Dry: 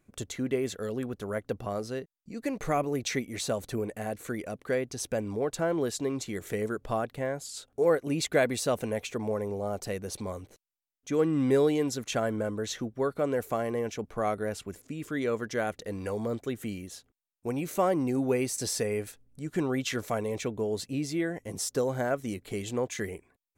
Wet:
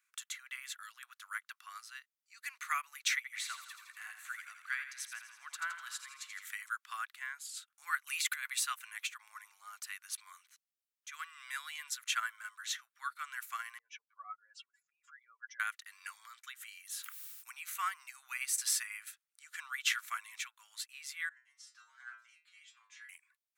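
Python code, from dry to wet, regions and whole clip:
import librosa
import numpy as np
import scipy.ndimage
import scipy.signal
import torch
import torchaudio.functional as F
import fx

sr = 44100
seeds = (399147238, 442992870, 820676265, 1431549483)

y = fx.chain(x, sr, fx.highpass(hz=510.0, slope=12),
    fx.high_shelf(hz=5400.0, db=-7.0),
    fx.echo_feedback(ms=82, feedback_pct=58, wet_db=-7.0), at=(3.16, 6.45))
y = fx.chain(y, sr, fx.highpass(hz=110.0, slope=6),
    fx.tilt_eq(slope=2.0),
    fx.over_compress(threshold_db=-32.0, ratio=-1.0), at=(8.07, 8.5))
y = fx.chain(y, sr, fx.spec_expand(power=2.4),
    fx.air_absorb(metres=180.0),
    fx.comb(ms=7.1, depth=0.94), at=(13.78, 15.6))
y = fx.chain(y, sr, fx.highpass(hz=320.0, slope=12),
    fx.high_shelf(hz=7600.0, db=10.0),
    fx.sustainer(db_per_s=24.0), at=(16.85, 17.5))
y = fx.chain(y, sr, fx.air_absorb(metres=97.0),
    fx.stiff_resonator(f0_hz=68.0, decay_s=0.62, stiffness=0.002), at=(21.29, 23.09))
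y = scipy.signal.sosfilt(scipy.signal.butter(8, 1200.0, 'highpass', fs=sr, output='sos'), y)
y = fx.dynamic_eq(y, sr, hz=5400.0, q=1.1, threshold_db=-52.0, ratio=4.0, max_db=-6)
y = fx.upward_expand(y, sr, threshold_db=-49.0, expansion=1.5)
y = F.gain(torch.from_numpy(y), 5.5).numpy()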